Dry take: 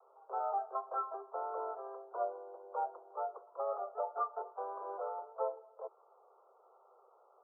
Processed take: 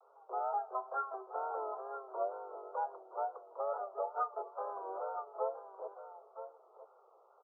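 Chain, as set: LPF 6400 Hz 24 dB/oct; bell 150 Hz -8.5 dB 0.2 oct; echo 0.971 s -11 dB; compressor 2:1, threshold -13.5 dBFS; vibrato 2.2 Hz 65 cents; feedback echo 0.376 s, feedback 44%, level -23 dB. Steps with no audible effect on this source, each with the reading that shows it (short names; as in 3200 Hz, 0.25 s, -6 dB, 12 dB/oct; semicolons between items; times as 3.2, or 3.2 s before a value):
LPF 6400 Hz: input band ends at 1400 Hz; bell 150 Hz: input band starts at 320 Hz; compressor, threshold -13.5 dBFS: input peak -23.0 dBFS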